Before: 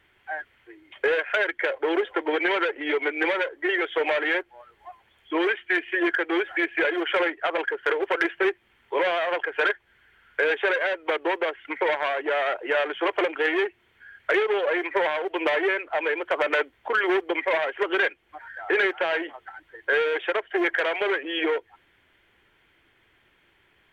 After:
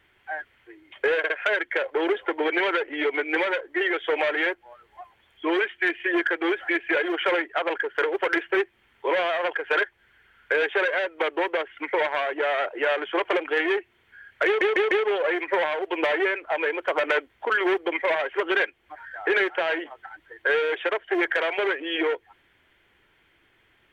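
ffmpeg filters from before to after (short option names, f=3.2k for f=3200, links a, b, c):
-filter_complex "[0:a]asplit=6[a][b][c][d][e][f];[a]atrim=end=1.242[g];[b]atrim=start=1.178:end=1.242[h];[c]atrim=start=1.178:end=14.492[i];[d]atrim=start=14.338:end=14.492[j];[e]atrim=start=14.338:end=14.492[k];[f]atrim=start=14.338[l];[g][h]acrossfade=d=0.004:c1=hsin:c2=hsin[m];[m][i]acrossfade=d=0.004:c1=hsin:c2=hsin[n];[n][j]acrossfade=d=0.004:c1=hsin:c2=hsin[o];[o][k]acrossfade=d=0.004:c1=hsin:c2=hsin[p];[p][l]acrossfade=d=0.004:c1=hsin:c2=hsin"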